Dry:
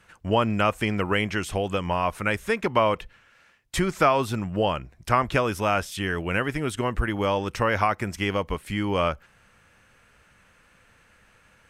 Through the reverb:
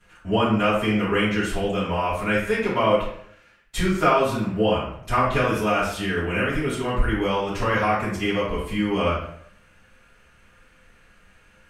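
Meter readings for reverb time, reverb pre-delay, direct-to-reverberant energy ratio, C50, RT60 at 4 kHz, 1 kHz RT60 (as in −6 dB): 0.65 s, 3 ms, −12.0 dB, 2.0 dB, 0.50 s, 0.60 s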